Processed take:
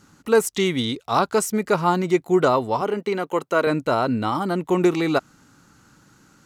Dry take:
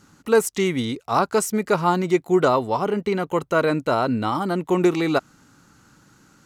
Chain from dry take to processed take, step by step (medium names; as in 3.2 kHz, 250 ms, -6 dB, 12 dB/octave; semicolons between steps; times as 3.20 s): 0.55–1.33 s: peaking EQ 3.5 kHz +7.5 dB 0.45 oct; 2.81–3.67 s: high-pass 240 Hz 12 dB/octave